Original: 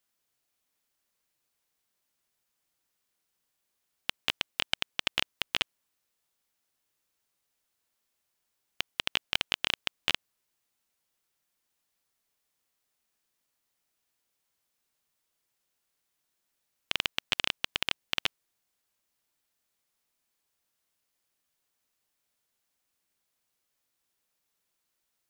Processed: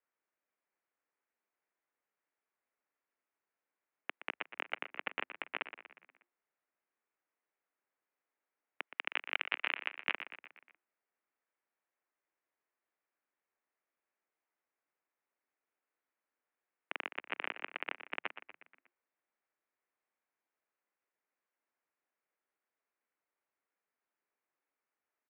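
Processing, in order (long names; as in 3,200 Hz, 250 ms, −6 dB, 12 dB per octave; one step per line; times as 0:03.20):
0:08.87–0:10.12: spectral tilt +4 dB per octave
echo with shifted repeats 120 ms, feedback 51%, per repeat −90 Hz, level −12 dB
single-sideband voice off tune −93 Hz 370–2,400 Hz
level −3.5 dB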